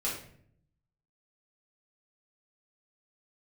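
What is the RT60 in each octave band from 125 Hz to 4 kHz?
1.1, 0.95, 0.70, 0.50, 0.55, 0.45 seconds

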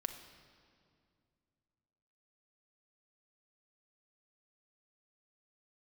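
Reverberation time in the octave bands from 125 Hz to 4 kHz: 3.1, 2.9, 2.4, 2.1, 1.9, 1.8 seconds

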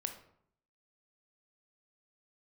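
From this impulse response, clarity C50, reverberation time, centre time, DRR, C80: 9.0 dB, 0.65 s, 14 ms, 5.5 dB, 12.5 dB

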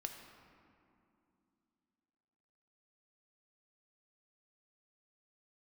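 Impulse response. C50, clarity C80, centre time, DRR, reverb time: 5.5 dB, 6.5 dB, 48 ms, 4.0 dB, 2.7 s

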